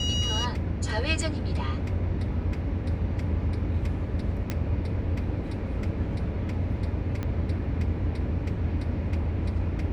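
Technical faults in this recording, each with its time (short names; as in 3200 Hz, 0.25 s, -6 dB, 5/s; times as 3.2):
4.5 pop -15 dBFS
7.23 pop -19 dBFS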